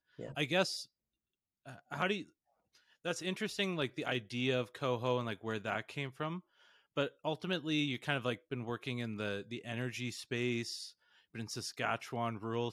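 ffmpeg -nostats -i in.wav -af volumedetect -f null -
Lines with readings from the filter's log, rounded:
mean_volume: -38.4 dB
max_volume: -17.4 dB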